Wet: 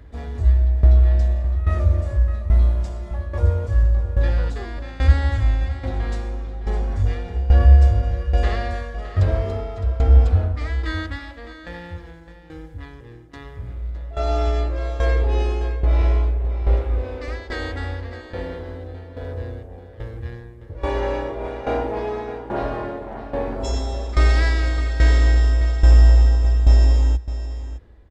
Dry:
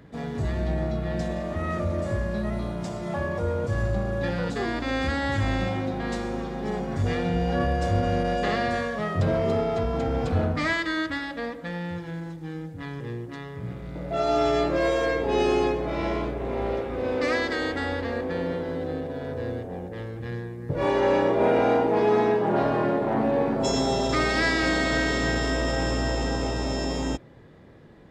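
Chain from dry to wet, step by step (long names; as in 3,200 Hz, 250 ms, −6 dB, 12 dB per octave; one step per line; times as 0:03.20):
low shelf with overshoot 100 Hz +14 dB, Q 3
shaped tremolo saw down 1.2 Hz, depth 85%
on a send: single-tap delay 611 ms −12.5 dB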